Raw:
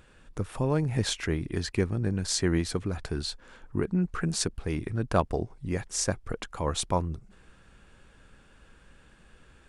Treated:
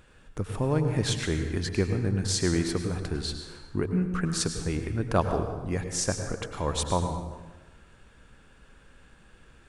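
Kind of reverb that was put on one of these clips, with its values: plate-style reverb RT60 1.2 s, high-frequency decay 0.75×, pre-delay 85 ms, DRR 6 dB

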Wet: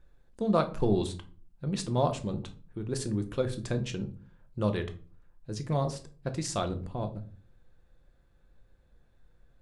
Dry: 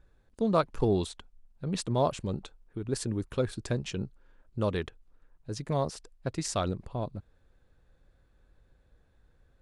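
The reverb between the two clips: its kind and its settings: shoebox room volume 280 m³, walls furnished, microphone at 0.84 m; gain -1.5 dB

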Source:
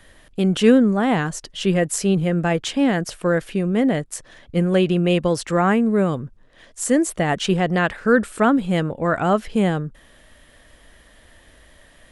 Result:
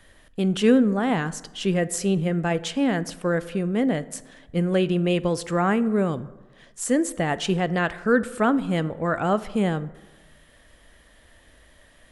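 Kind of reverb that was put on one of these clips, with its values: plate-style reverb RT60 1.2 s, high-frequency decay 0.45×, DRR 15.5 dB; gain -4 dB

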